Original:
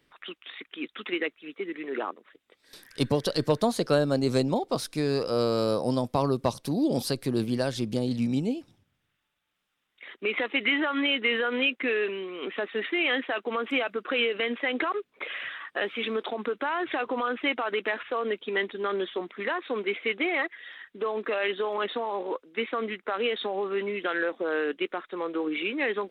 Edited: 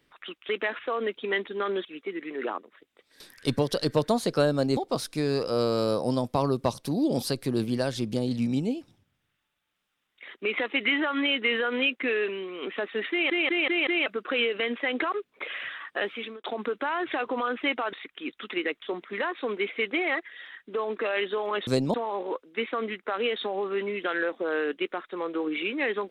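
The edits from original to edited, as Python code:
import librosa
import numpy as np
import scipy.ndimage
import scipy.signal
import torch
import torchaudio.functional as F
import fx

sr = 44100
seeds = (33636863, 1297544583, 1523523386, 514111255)

y = fx.edit(x, sr, fx.swap(start_s=0.49, length_s=0.89, other_s=17.73, other_length_s=1.36),
    fx.move(start_s=4.3, length_s=0.27, to_s=21.94),
    fx.stutter_over(start_s=12.91, slice_s=0.19, count=5),
    fx.fade_out_span(start_s=15.85, length_s=0.39), tone=tone)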